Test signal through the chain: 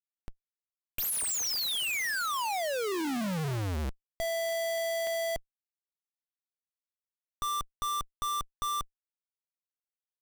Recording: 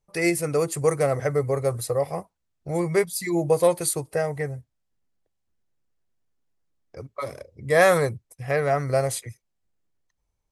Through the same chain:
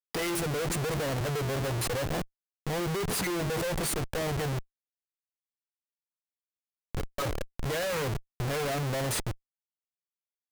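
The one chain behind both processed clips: de-hum 84.46 Hz, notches 5; short-mantissa float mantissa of 2-bit; Schmitt trigger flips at -35 dBFS; trim -4 dB

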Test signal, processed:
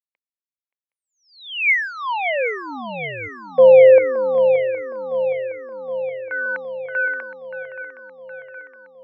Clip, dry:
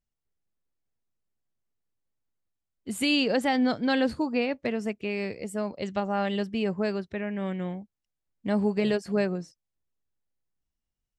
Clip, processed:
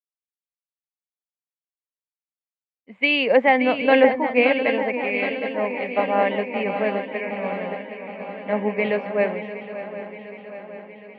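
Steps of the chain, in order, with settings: cabinet simulation 310–2500 Hz, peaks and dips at 350 Hz -9 dB, 530 Hz +5 dB, 980 Hz +4 dB, 1.4 kHz -8 dB, 2.2 kHz +10 dB; on a send: shuffle delay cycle 767 ms, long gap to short 3:1, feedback 73%, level -8 dB; on the sum: three bands expanded up and down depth 70%; trim +6 dB

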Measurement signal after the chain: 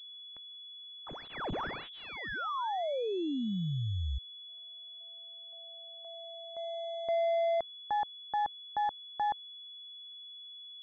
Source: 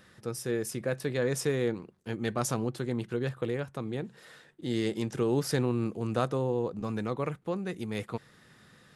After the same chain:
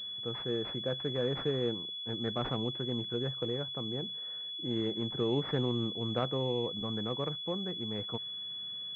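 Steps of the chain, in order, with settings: crackle 250 per s -61 dBFS; class-D stage that switches slowly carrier 3.4 kHz; trim -3.5 dB

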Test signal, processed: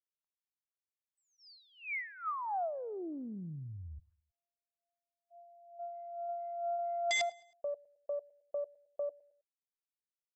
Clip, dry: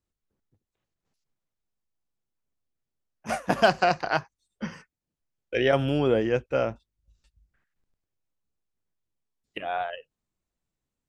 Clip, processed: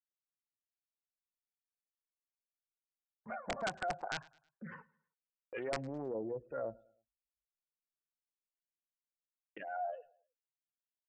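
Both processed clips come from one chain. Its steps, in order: band-stop 5.8 kHz, Q 5.1; spectral gate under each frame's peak -15 dB strong; gate -50 dBFS, range -35 dB; peaking EQ 64 Hz -9 dB 1.9 oct; transient shaper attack -6 dB, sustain +2 dB; compression 2:1, threshold -45 dBFS; LFO low-pass sine 2.2 Hz 720–2000 Hz; integer overflow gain 24 dB; brick-wall FIR low-pass 8.1 kHz; on a send: feedback delay 106 ms, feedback 42%, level -24 dB; on the sum: loudspeaker Doppler distortion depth 0.2 ms; trim -3.5 dB

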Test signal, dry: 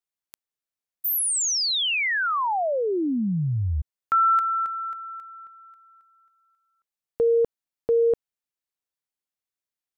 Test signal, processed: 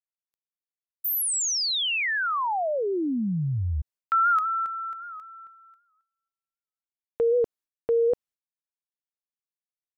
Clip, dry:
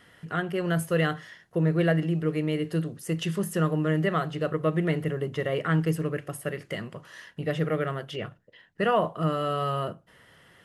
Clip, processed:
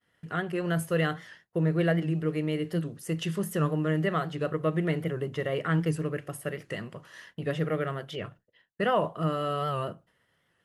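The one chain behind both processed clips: expander -46 dBFS; warped record 78 rpm, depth 100 cents; trim -2 dB

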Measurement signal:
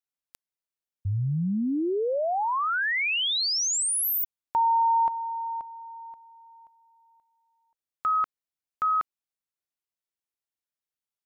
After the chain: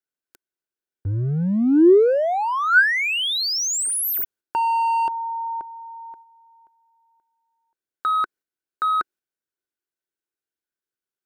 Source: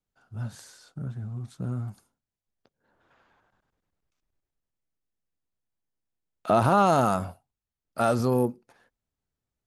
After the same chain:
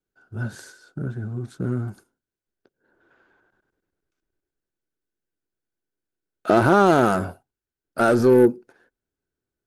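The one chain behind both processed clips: gate -50 dBFS, range -6 dB; in parallel at -7 dB: wavefolder -25 dBFS; on the sum: small resonant body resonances 360/1500 Hz, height 13 dB, ringing for 20 ms

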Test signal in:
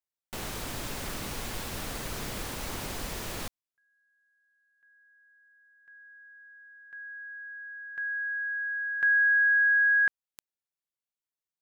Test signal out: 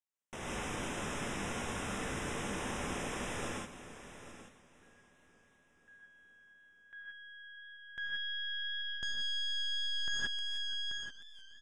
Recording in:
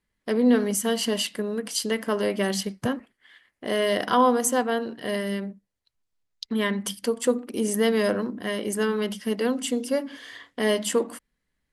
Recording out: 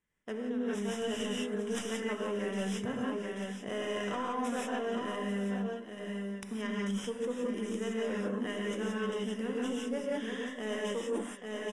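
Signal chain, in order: tracing distortion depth 0.35 ms; steep low-pass 9.8 kHz 36 dB/octave; bass shelf 63 Hz -9 dB; on a send: delay 835 ms -13.5 dB; on the sum: gated-style reverb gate 200 ms rising, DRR -4 dB; reverse; compression 12:1, threshold -26 dBFS; reverse; Butterworth band-stop 4.4 kHz, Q 2.6; modulated delay 478 ms, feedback 63%, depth 97 cents, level -20 dB; trim -5 dB

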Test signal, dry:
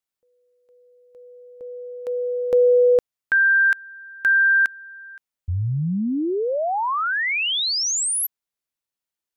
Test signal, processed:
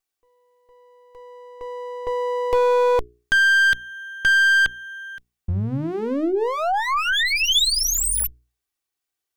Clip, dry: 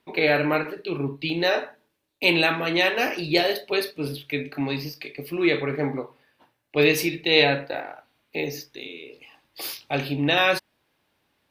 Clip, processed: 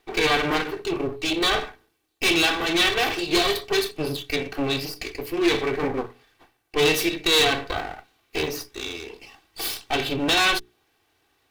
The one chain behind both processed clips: comb filter that takes the minimum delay 2.6 ms; hum notches 60/120/180/240/300/360/420 Hz; in parallel at -1 dB: compression 6:1, threshold -29 dBFS; on the sum: dynamic bell 3.5 kHz, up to +7 dB, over -42 dBFS, Q 4; overload inside the chain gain 13 dB

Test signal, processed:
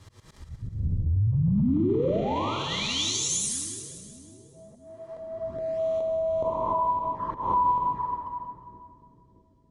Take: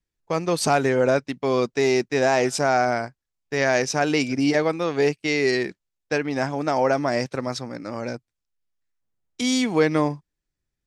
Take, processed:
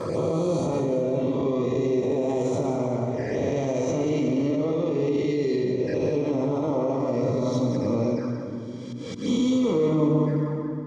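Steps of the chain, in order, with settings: reverse spectral sustain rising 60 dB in 1.51 s; Chebyshev low-pass 7.4 kHz, order 2; tilt EQ -3 dB/octave; plate-style reverb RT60 1.5 s, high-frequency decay 0.75×, pre-delay 0 ms, DRR 1.5 dB; peak limiter -12 dBFS; compression 3:1, threshold -24 dBFS; touch-sensitive flanger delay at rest 11.6 ms, full sweep at -23 dBFS; slow attack 162 ms; gain riding 2 s; band-stop 2.6 kHz, Q 8.6; comb of notches 730 Hz; two-band feedback delay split 370 Hz, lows 621 ms, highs 182 ms, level -10 dB; trim +2.5 dB

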